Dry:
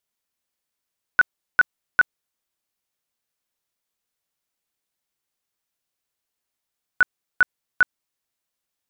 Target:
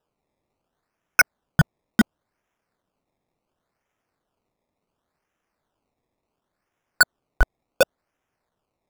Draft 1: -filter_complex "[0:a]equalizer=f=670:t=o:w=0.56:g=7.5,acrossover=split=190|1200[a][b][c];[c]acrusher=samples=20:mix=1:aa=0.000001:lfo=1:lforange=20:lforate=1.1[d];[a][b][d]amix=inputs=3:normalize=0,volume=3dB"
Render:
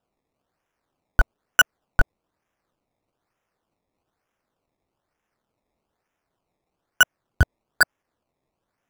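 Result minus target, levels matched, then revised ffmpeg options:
decimation with a swept rate: distortion -12 dB
-filter_complex "[0:a]equalizer=f=670:t=o:w=0.56:g=7.5,acrossover=split=190|1200[a][b][c];[c]acrusher=samples=20:mix=1:aa=0.000001:lfo=1:lforange=20:lforate=0.7[d];[a][b][d]amix=inputs=3:normalize=0,volume=3dB"

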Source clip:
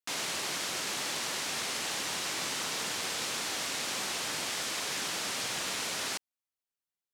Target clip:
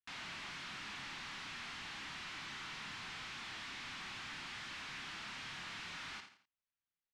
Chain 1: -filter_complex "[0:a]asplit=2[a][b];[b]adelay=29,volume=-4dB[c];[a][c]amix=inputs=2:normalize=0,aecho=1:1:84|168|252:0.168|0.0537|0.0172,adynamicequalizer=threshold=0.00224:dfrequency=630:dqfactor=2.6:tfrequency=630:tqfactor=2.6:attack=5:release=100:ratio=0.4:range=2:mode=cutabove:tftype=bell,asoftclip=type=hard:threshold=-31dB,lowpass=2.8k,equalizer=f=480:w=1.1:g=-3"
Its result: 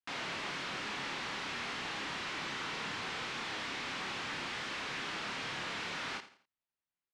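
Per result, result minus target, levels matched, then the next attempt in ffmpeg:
500 Hz band +8.0 dB; hard clip: distortion -6 dB
-filter_complex "[0:a]asplit=2[a][b];[b]adelay=29,volume=-4dB[c];[a][c]amix=inputs=2:normalize=0,aecho=1:1:84|168|252:0.168|0.0537|0.0172,adynamicequalizer=threshold=0.00224:dfrequency=630:dqfactor=2.6:tfrequency=630:tqfactor=2.6:attack=5:release=100:ratio=0.4:range=2:mode=cutabove:tftype=bell,asoftclip=type=hard:threshold=-31dB,lowpass=2.8k,equalizer=f=480:w=1.1:g=-15"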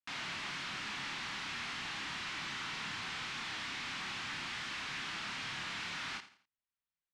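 hard clip: distortion -6 dB
-filter_complex "[0:a]asplit=2[a][b];[b]adelay=29,volume=-4dB[c];[a][c]amix=inputs=2:normalize=0,aecho=1:1:84|168|252:0.168|0.0537|0.0172,adynamicequalizer=threshold=0.00224:dfrequency=630:dqfactor=2.6:tfrequency=630:tqfactor=2.6:attack=5:release=100:ratio=0.4:range=2:mode=cutabove:tftype=bell,asoftclip=type=hard:threshold=-39dB,lowpass=2.8k,equalizer=f=480:w=1.1:g=-15"

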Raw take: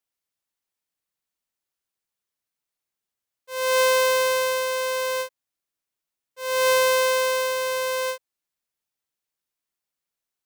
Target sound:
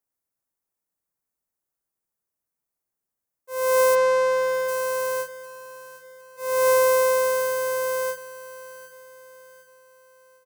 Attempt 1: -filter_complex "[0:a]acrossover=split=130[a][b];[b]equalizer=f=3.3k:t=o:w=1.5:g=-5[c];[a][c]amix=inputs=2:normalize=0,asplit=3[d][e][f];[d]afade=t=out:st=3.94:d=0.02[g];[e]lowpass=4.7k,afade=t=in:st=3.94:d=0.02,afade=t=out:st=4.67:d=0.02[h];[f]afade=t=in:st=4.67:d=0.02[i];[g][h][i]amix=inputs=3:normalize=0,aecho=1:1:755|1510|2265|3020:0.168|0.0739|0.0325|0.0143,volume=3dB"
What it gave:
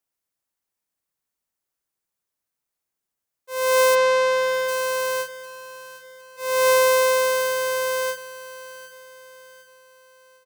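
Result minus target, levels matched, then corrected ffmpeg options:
4000 Hz band +7.0 dB
-filter_complex "[0:a]acrossover=split=130[a][b];[b]equalizer=f=3.3k:t=o:w=1.5:g=-16[c];[a][c]amix=inputs=2:normalize=0,asplit=3[d][e][f];[d]afade=t=out:st=3.94:d=0.02[g];[e]lowpass=4.7k,afade=t=in:st=3.94:d=0.02,afade=t=out:st=4.67:d=0.02[h];[f]afade=t=in:st=4.67:d=0.02[i];[g][h][i]amix=inputs=3:normalize=0,aecho=1:1:755|1510|2265|3020:0.168|0.0739|0.0325|0.0143,volume=3dB"

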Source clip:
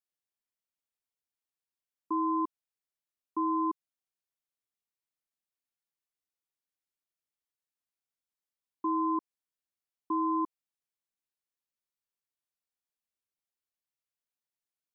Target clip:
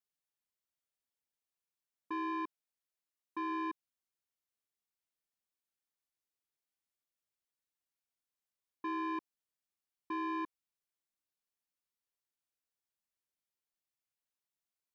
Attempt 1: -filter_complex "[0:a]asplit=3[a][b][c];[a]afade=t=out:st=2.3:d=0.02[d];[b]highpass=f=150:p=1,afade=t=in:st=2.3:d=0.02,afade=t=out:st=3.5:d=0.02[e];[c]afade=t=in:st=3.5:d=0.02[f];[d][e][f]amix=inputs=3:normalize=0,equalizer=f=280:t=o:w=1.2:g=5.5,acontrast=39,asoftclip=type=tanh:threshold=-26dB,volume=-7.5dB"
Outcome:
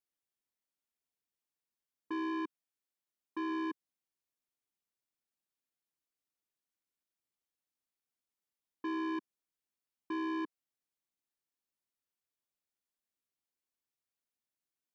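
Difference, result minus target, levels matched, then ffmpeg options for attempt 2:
250 Hz band +2.5 dB
-filter_complex "[0:a]asplit=3[a][b][c];[a]afade=t=out:st=2.3:d=0.02[d];[b]highpass=f=150:p=1,afade=t=in:st=2.3:d=0.02,afade=t=out:st=3.5:d=0.02[e];[c]afade=t=in:st=3.5:d=0.02[f];[d][e][f]amix=inputs=3:normalize=0,acontrast=39,asoftclip=type=tanh:threshold=-26dB,volume=-7.5dB"

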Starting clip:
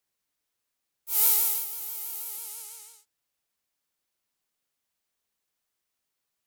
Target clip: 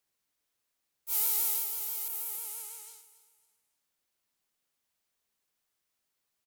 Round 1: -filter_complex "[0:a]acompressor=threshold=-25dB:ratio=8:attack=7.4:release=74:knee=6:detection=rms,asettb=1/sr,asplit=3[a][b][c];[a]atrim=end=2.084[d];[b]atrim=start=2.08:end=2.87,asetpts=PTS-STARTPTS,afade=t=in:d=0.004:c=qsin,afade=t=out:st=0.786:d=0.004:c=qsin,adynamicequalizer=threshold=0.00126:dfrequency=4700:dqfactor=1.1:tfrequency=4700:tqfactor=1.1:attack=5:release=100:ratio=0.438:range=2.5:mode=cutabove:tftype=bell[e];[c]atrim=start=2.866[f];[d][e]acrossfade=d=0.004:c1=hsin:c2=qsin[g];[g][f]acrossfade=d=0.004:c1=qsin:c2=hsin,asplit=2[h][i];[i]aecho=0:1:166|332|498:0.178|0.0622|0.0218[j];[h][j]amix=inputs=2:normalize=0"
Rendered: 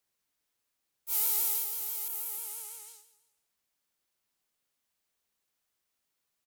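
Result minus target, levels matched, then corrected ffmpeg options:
echo 0.111 s early
-filter_complex "[0:a]acompressor=threshold=-25dB:ratio=8:attack=7.4:release=74:knee=6:detection=rms,asettb=1/sr,asplit=3[a][b][c];[a]atrim=end=2.084[d];[b]atrim=start=2.08:end=2.87,asetpts=PTS-STARTPTS,afade=t=in:d=0.004:c=qsin,afade=t=out:st=0.786:d=0.004:c=qsin,adynamicequalizer=threshold=0.00126:dfrequency=4700:dqfactor=1.1:tfrequency=4700:tqfactor=1.1:attack=5:release=100:ratio=0.438:range=2.5:mode=cutabove:tftype=bell[e];[c]atrim=start=2.866[f];[d][e]acrossfade=d=0.004:c1=hsin:c2=qsin[g];[g][f]acrossfade=d=0.004:c1=qsin:c2=hsin,asplit=2[h][i];[i]aecho=0:1:277|554|831:0.178|0.0622|0.0218[j];[h][j]amix=inputs=2:normalize=0"

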